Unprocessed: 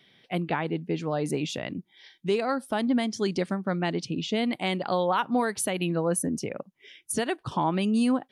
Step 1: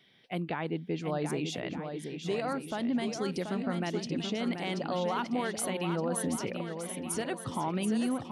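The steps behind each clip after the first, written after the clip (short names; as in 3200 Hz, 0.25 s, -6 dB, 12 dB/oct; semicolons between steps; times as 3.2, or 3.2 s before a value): limiter -19.5 dBFS, peak gain reduction 4 dB; on a send: swung echo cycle 1.22 s, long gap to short 1.5:1, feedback 38%, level -7 dB; on the sum: gain -4 dB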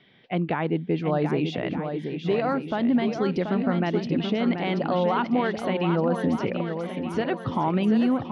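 air absorption 280 m; gain +9 dB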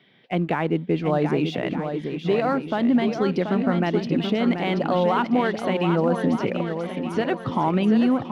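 HPF 110 Hz 12 dB/oct; in parallel at -8 dB: crossover distortion -40 dBFS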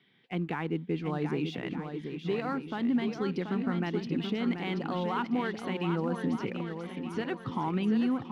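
bell 610 Hz -12 dB 0.44 oct; gain -8 dB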